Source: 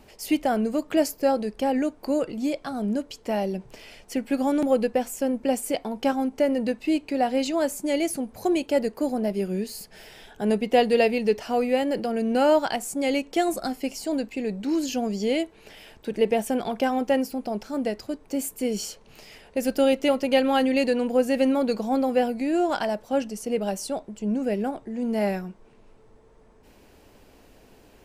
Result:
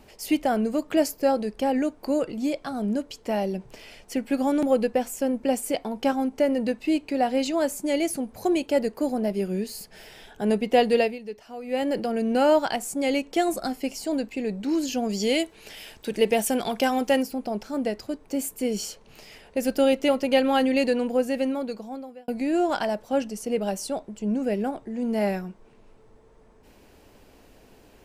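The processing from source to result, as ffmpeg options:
-filter_complex "[0:a]asettb=1/sr,asplit=3[a][b][c];[a]atrim=end=15.094[d];[b]atrim=start=15.09:end=17.23,asetpts=PTS-STARTPTS,afade=t=in:d=0.004:c=qsin,afade=t=out:st=2.136:d=0.004:c=qsin,highshelf=f=2.5k:g=9.5[e];[c]atrim=start=17.226[f];[d][e]acrossfade=d=0.004:c1=hsin:c2=qsin[g];[g][f]acrossfade=d=0.004:c1=qsin:c2=hsin,asplit=4[h][i][j][k];[h]atrim=end=11.18,asetpts=PTS-STARTPTS,afade=t=out:st=10.96:d=0.22:silence=0.199526[l];[i]atrim=start=11.18:end=11.63,asetpts=PTS-STARTPTS,volume=-14dB[m];[j]atrim=start=11.63:end=22.28,asetpts=PTS-STARTPTS,afade=t=in:d=0.22:silence=0.199526,afade=t=out:st=9.28:d=1.37[n];[k]atrim=start=22.28,asetpts=PTS-STARTPTS,afade=t=in:d=0.004:c=hsin[o];[l][m][n][o]concat=n=4:v=0:a=1"

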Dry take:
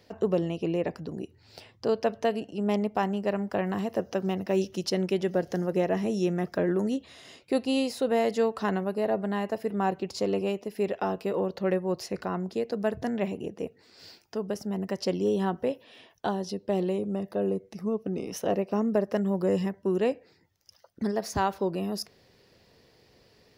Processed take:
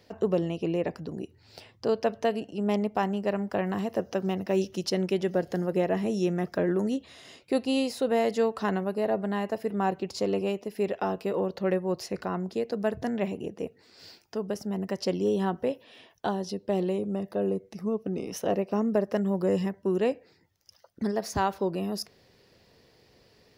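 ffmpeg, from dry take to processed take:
-filter_complex "[0:a]asettb=1/sr,asplit=3[a][b][c];[a]atrim=end=5.444[d];[b]atrim=start=5.44:end=6.06,asetpts=PTS-STARTPTS,afade=t=in:d=0.004:c=qsin,afade=t=out:st=0.616:d=0.004:c=qsin,bandreject=f=5.9k:w=5.6[e];[c]atrim=start=6.056[f];[d][e]acrossfade=d=0.004:c1=hsin:c2=qsin[g];[g][f]acrossfade=d=0.004:c1=qsin:c2=hsin"

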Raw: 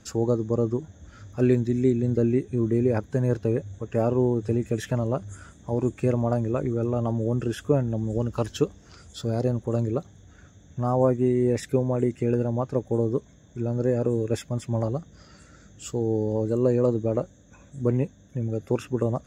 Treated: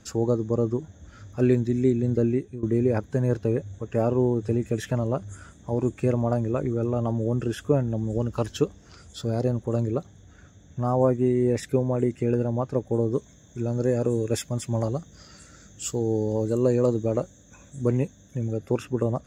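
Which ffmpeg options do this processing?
-filter_complex "[0:a]asettb=1/sr,asplit=3[a][b][c];[a]atrim=end=13.134[d];[b]atrim=start=13.13:end=18.53,asetpts=PTS-STARTPTS,afade=t=in:d=0.004:c=qsin,afade=t=out:st=5.396:d=0.004:c=qsin,highshelf=f=4k:g=9.5[e];[c]atrim=start=18.526[f];[d][e]acrossfade=d=0.004:c1=hsin:c2=qsin[g];[g][f]acrossfade=d=0.004:c1=qsin:c2=hsin,asplit=2[h][i];[h]atrim=end=2.63,asetpts=PTS-STARTPTS,afade=t=out:st=2.15:d=0.48:c=qsin:silence=0.133352[j];[i]atrim=start=2.63,asetpts=PTS-STARTPTS,afade=t=in:d=0.004:c=hsin:silence=0.133352[k];[j][k]concat=n=2:v=0:a=1"

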